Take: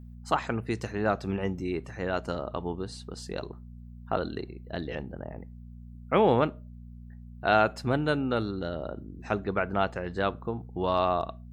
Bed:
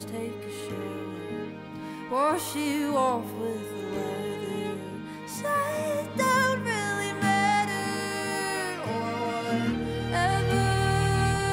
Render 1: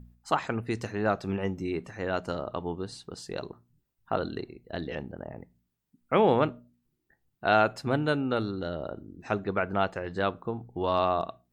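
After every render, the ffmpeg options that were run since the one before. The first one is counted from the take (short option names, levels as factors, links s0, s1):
-af "bandreject=f=60:t=h:w=4,bandreject=f=120:t=h:w=4,bandreject=f=180:t=h:w=4,bandreject=f=240:t=h:w=4"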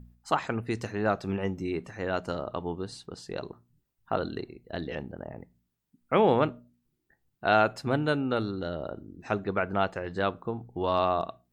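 -filter_complex "[0:a]asettb=1/sr,asplit=3[s0][s1][s2];[s0]atrim=end=3.064[s3];[s1]atrim=start=3.06:end=3.46,asetpts=PTS-STARTPTS,afade=t=in:d=0.004:c=qsin,afade=t=out:st=0.396:d=0.004:c=qsin,highshelf=f=6300:g=-7[s4];[s2]atrim=start=3.456[s5];[s3][s4]acrossfade=d=0.004:c1=hsin:c2=qsin[s6];[s6][s5]acrossfade=d=0.004:c1=qsin:c2=hsin"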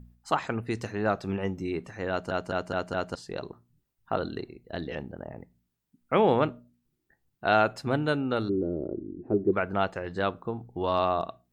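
-filter_complex "[0:a]asplit=3[s0][s1][s2];[s0]afade=t=out:st=8.48:d=0.02[s3];[s1]lowpass=f=360:t=q:w=4.3,afade=t=in:st=8.48:d=0.02,afade=t=out:st=9.52:d=0.02[s4];[s2]afade=t=in:st=9.52:d=0.02[s5];[s3][s4][s5]amix=inputs=3:normalize=0,asplit=6[s6][s7][s8][s9][s10][s11];[s6]atrim=end=2.312[s12];[s7]atrim=start=2.098:end=2.312[s13];[s8]atrim=start=2.098:end=2.312[s14];[s9]atrim=start=2.098:end=2.312[s15];[s10]atrim=start=2.098:end=2.312[s16];[s11]atrim=start=3.148[s17];[s12][s13]acrossfade=d=0.004:c1=hsin:c2=hsin[s18];[s18][s14]acrossfade=d=0.004:c1=hsin:c2=hsin[s19];[s19][s15]acrossfade=d=0.004:c1=hsin:c2=hsin[s20];[s20][s16]acrossfade=d=0.004:c1=hsin:c2=hsin[s21];[s21][s17]acrossfade=d=0.004:c1=hsin:c2=hsin"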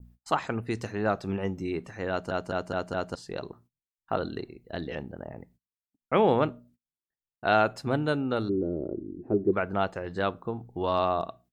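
-af "agate=range=0.0355:threshold=0.00141:ratio=16:detection=peak,adynamicequalizer=threshold=0.00794:dfrequency=2200:dqfactor=0.95:tfrequency=2200:tqfactor=0.95:attack=5:release=100:ratio=0.375:range=2:mode=cutabove:tftype=bell"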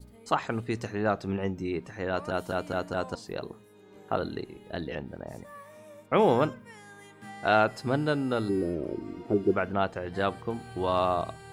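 -filter_complex "[1:a]volume=0.0944[s0];[0:a][s0]amix=inputs=2:normalize=0"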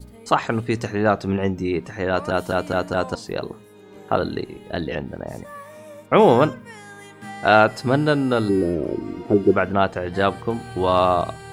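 -af "volume=2.66,alimiter=limit=0.794:level=0:latency=1"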